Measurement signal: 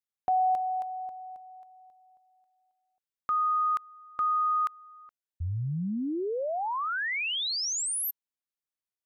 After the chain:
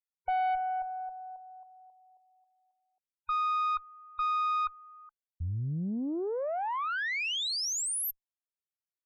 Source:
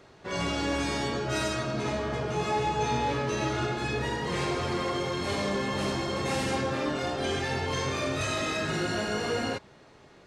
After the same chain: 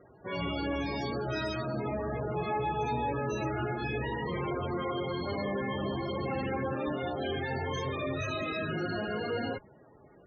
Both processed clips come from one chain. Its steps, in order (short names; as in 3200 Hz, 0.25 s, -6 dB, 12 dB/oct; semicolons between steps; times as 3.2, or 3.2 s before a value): tube stage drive 25 dB, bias 0.35; loudest bins only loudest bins 32